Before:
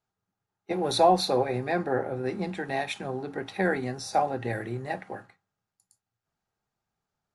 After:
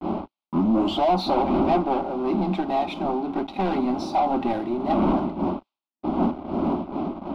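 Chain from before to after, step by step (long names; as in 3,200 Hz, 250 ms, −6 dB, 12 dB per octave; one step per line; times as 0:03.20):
turntable start at the beginning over 1.15 s
wind on the microphone 410 Hz −34 dBFS
noise gate −42 dBFS, range −30 dB
high-pass filter 140 Hz 12 dB per octave
high-shelf EQ 8,400 Hz +5.5 dB
leveller curve on the samples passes 5
high-frequency loss of the air 370 metres
phaser with its sweep stopped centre 470 Hz, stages 6
delay with a high-pass on its return 94 ms, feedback 42%, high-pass 4,700 Hz, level −22.5 dB
amplitude modulation by smooth noise, depth 55%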